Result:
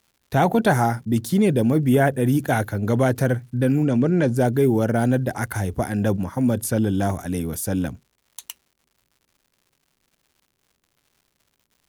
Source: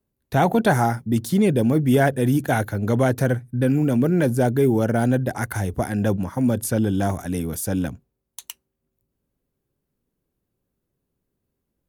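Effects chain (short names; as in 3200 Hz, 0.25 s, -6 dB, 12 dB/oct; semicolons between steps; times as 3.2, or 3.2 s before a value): 1.89–2.29 bell 4700 Hz -12 dB 0.57 oct; 3.83–4.36 LPF 7600 Hz 24 dB/oct; crackle 230/s -49 dBFS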